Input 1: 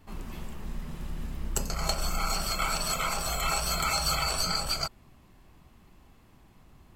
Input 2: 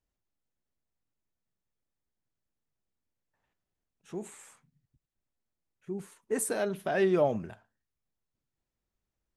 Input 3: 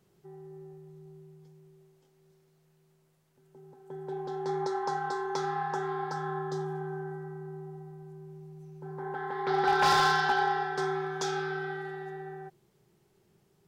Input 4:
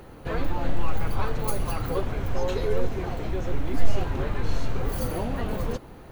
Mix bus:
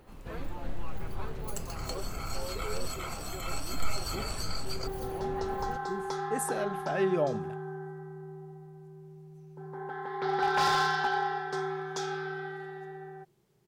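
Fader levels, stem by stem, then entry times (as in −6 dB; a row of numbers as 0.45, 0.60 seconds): −10.0, −3.0, −2.5, −11.5 decibels; 0.00, 0.00, 0.75, 0.00 seconds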